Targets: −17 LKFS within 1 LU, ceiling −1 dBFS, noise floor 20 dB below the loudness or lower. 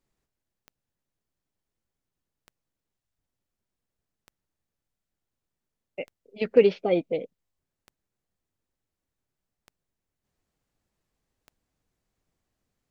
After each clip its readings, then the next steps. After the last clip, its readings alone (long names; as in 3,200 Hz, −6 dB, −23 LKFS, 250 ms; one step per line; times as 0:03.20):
number of clicks 7; integrated loudness −24.0 LKFS; sample peak −6.0 dBFS; target loudness −17.0 LKFS
→ click removal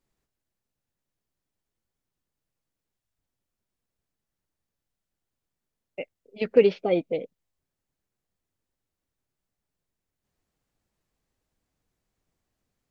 number of clicks 0; integrated loudness −24.0 LKFS; sample peak −6.0 dBFS; target loudness −17.0 LKFS
→ level +7 dB
brickwall limiter −1 dBFS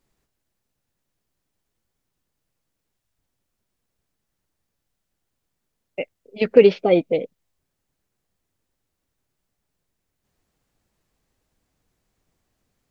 integrated loudness −17.5 LKFS; sample peak −1.0 dBFS; background noise floor −79 dBFS